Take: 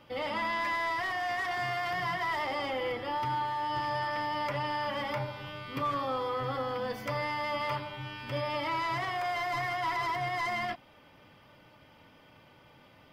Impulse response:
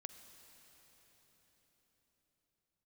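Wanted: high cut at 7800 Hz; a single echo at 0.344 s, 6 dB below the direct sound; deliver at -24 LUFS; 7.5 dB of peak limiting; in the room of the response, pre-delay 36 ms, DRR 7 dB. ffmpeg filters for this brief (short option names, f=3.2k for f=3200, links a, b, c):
-filter_complex "[0:a]lowpass=7.8k,alimiter=level_in=7.5dB:limit=-24dB:level=0:latency=1,volume=-7.5dB,aecho=1:1:344:0.501,asplit=2[a][b];[1:a]atrim=start_sample=2205,adelay=36[c];[b][c]afir=irnorm=-1:irlink=0,volume=-2dB[d];[a][d]amix=inputs=2:normalize=0,volume=12.5dB"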